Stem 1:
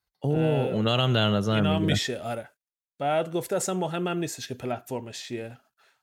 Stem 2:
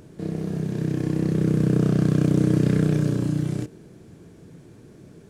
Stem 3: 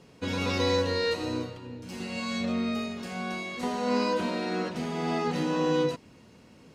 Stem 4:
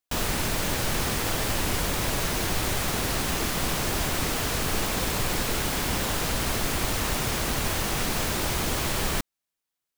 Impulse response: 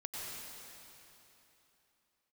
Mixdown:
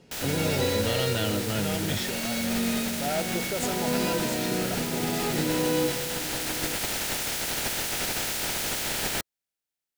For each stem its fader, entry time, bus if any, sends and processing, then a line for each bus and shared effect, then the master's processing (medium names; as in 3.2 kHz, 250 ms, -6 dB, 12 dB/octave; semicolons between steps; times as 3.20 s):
-4.5 dB, 0.00 s, no send, none
-19.0 dB, 2.40 s, no send, none
-2.5 dB, 0.00 s, send -5 dB, none
-6.5 dB, 0.00 s, no send, spectral peaks clipped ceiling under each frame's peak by 19 dB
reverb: on, RT60 3.2 s, pre-delay 87 ms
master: peaking EQ 1.1 kHz -12 dB 0.2 oct; gain riding 2 s